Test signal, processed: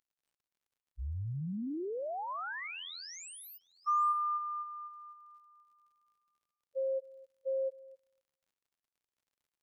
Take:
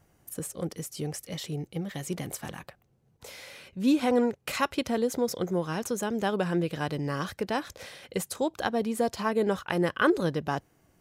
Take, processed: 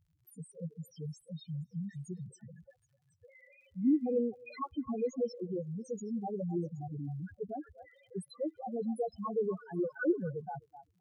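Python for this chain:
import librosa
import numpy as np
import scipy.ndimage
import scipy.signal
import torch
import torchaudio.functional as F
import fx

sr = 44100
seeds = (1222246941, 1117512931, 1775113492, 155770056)

y = fx.spec_topn(x, sr, count=2)
y = fx.dmg_crackle(y, sr, seeds[0], per_s=72.0, level_db=-64.0)
y = fx.echo_stepped(y, sr, ms=258, hz=920.0, octaves=1.4, feedback_pct=70, wet_db=-11.5)
y = y * 10.0 ** (-3.0 / 20.0)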